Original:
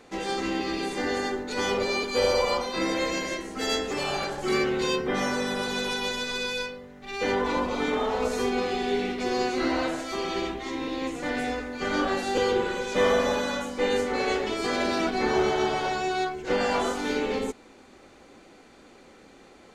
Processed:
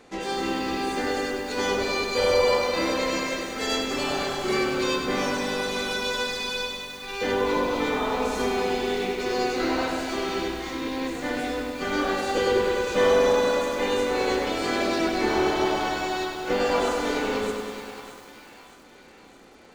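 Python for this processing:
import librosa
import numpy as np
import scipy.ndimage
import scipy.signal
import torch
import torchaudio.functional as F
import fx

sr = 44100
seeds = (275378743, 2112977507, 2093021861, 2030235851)

p1 = x + fx.echo_split(x, sr, split_hz=820.0, low_ms=183, high_ms=619, feedback_pct=52, wet_db=-12, dry=0)
y = fx.echo_crushed(p1, sr, ms=99, feedback_pct=80, bits=8, wet_db=-7)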